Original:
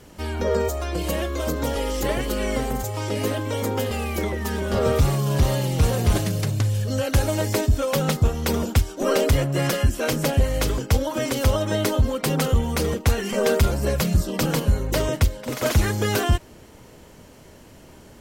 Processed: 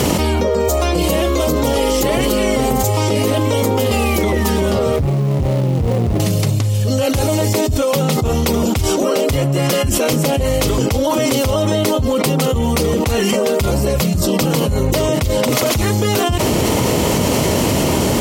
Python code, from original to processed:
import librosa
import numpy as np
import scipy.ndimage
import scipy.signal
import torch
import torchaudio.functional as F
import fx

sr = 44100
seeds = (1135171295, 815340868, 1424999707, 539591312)

y = fx.median_filter(x, sr, points=41, at=(4.96, 6.2))
y = scipy.signal.sosfilt(scipy.signal.butter(2, 76.0, 'highpass', fs=sr, output='sos'), y)
y = fx.peak_eq(y, sr, hz=1600.0, db=-9.0, octaves=0.38)
y = fx.env_flatten(y, sr, amount_pct=100)